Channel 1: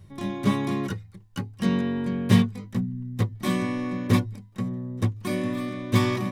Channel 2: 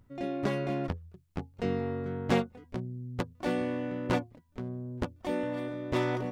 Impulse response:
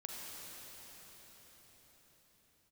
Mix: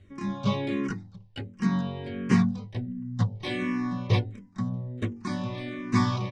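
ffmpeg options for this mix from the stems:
-filter_complex "[0:a]bandreject=frequency=47.14:width_type=h:width=4,bandreject=frequency=94.28:width_type=h:width=4,bandreject=frequency=141.42:width_type=h:width=4,bandreject=frequency=188.56:width_type=h:width=4,bandreject=frequency=235.7:width_type=h:width=4,bandreject=frequency=282.84:width_type=h:width=4,bandreject=frequency=329.98:width_type=h:width=4,bandreject=frequency=377.12:width_type=h:width=4,bandreject=frequency=424.26:width_type=h:width=4,bandreject=frequency=471.4:width_type=h:width=4,bandreject=frequency=518.54:width_type=h:width=4,bandreject=frequency=565.68:width_type=h:width=4,bandreject=frequency=612.82:width_type=h:width=4,bandreject=frequency=659.96:width_type=h:width=4,bandreject=frequency=707.1:width_type=h:width=4,bandreject=frequency=754.24:width_type=h:width=4,bandreject=frequency=801.38:width_type=h:width=4,bandreject=frequency=848.52:width_type=h:width=4,bandreject=frequency=895.66:width_type=h:width=4,volume=1dB[link_01];[1:a]adelay=6.6,volume=-7.5dB[link_02];[link_01][link_02]amix=inputs=2:normalize=0,lowpass=frequency=6600:width=0.5412,lowpass=frequency=6600:width=1.3066,asplit=2[link_03][link_04];[link_04]afreqshift=-1.4[link_05];[link_03][link_05]amix=inputs=2:normalize=1"

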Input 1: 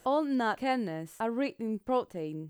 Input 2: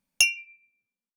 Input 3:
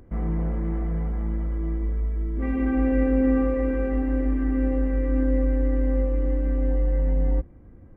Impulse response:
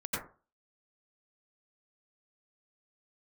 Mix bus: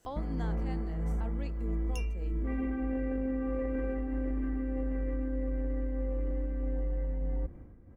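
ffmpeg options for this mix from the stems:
-filter_complex "[0:a]equalizer=frequency=5800:width_type=o:width=0.68:gain=7,acrossover=split=440[link_01][link_02];[link_01]aeval=exprs='val(0)*(1-0.5/2+0.5/2*cos(2*PI*6*n/s))':channel_layout=same[link_03];[link_02]aeval=exprs='val(0)*(1-0.5/2-0.5/2*cos(2*PI*6*n/s))':channel_layout=same[link_04];[link_03][link_04]amix=inputs=2:normalize=0,alimiter=limit=-22.5dB:level=0:latency=1:release=464,volume=-7dB[link_05];[1:a]acompressor=threshold=-27dB:ratio=6,adelay=1750,volume=-5.5dB[link_06];[2:a]adelay=50,volume=2.5dB[link_07];[link_06][link_07]amix=inputs=2:normalize=0,tremolo=f=1.6:d=0.72,alimiter=limit=-21dB:level=0:latency=1:release=15,volume=0dB[link_08];[link_05][link_08]amix=inputs=2:normalize=0,acompressor=threshold=-29dB:ratio=6"

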